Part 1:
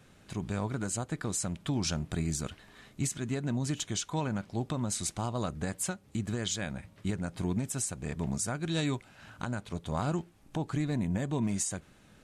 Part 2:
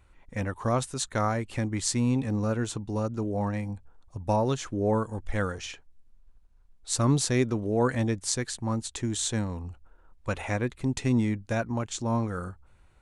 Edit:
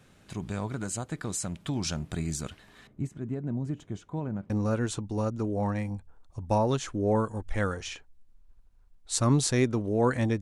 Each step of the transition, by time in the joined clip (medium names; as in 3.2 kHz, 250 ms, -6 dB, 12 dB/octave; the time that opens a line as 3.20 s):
part 1
2.87–4.50 s: FFT filter 390 Hz 0 dB, 2.1 kHz -13 dB, 4.2 kHz -22 dB
4.50 s: go over to part 2 from 2.28 s